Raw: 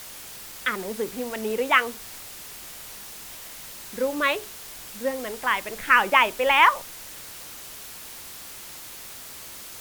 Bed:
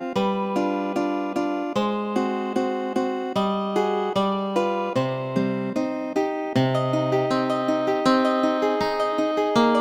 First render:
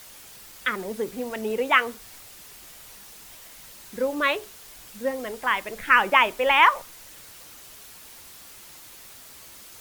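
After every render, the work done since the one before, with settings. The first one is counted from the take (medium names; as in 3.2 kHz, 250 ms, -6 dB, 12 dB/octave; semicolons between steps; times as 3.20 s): noise reduction 6 dB, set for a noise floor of -41 dBFS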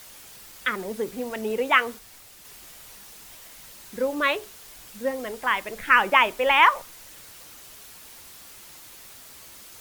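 1.99–2.45 s: gain -3 dB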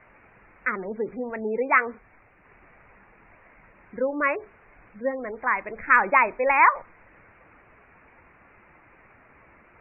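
steep low-pass 2.4 kHz 72 dB/octave; spectral gate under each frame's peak -30 dB strong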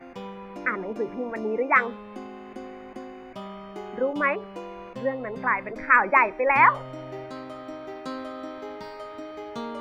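add bed -15.5 dB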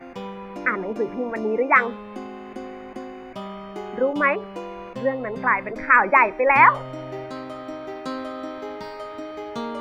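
trim +4 dB; peak limiter -3 dBFS, peak gain reduction 2.5 dB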